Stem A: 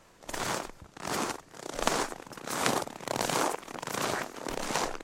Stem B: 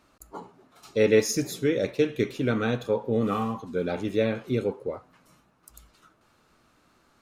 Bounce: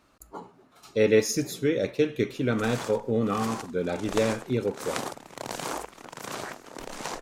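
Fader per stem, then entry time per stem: −4.5, −0.5 decibels; 2.30, 0.00 seconds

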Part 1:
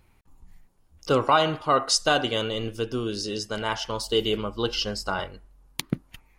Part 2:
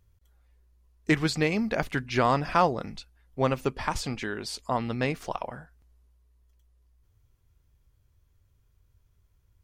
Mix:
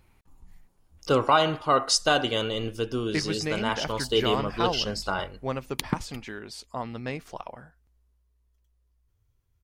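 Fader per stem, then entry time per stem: −0.5, −5.5 decibels; 0.00, 2.05 seconds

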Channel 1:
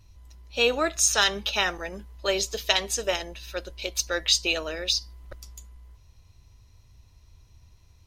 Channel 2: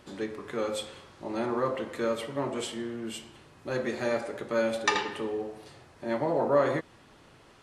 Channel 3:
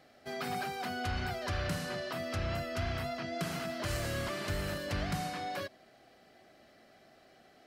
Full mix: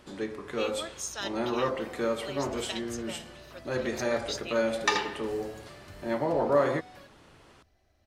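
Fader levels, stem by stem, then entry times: −15.0, 0.0, −13.5 decibels; 0.00, 0.00, 1.40 seconds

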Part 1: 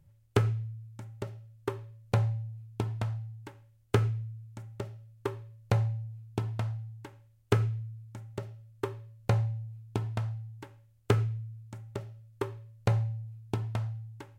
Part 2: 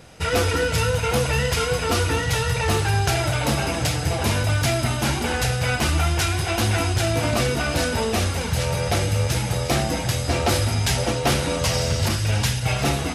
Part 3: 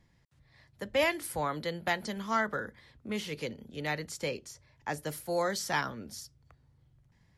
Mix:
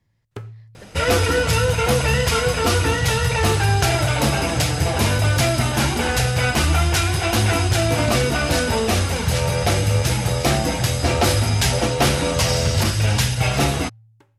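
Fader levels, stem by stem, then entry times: −8.5, +3.0, −4.5 decibels; 0.00, 0.75, 0.00 seconds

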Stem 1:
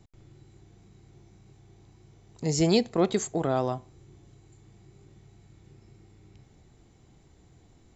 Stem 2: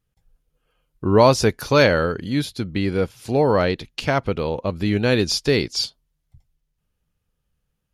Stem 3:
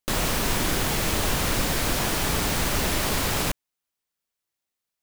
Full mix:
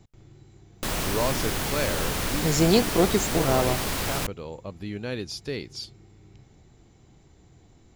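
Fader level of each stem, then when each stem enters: +2.5, −13.5, −3.5 decibels; 0.00, 0.00, 0.75 seconds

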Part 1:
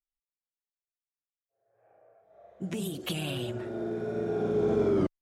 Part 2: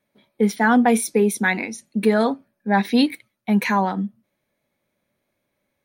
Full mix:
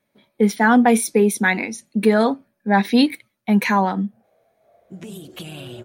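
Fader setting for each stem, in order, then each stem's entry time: −2.0, +2.0 decibels; 2.30, 0.00 seconds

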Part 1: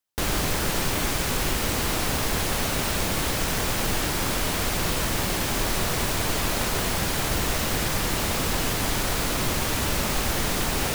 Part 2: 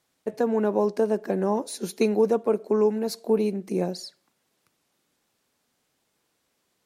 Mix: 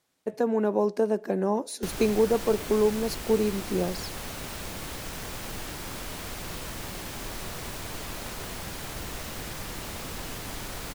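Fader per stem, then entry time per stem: −11.5, −1.5 decibels; 1.65, 0.00 seconds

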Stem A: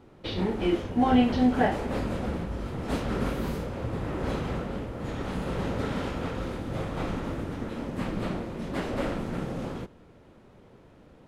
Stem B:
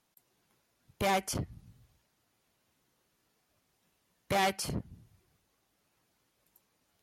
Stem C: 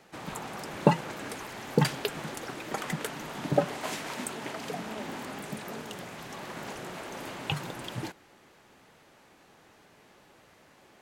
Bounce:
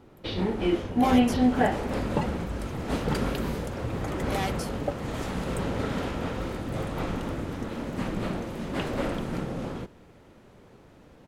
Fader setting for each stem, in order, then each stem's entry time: +0.5, −3.5, −6.5 decibels; 0.00, 0.00, 1.30 seconds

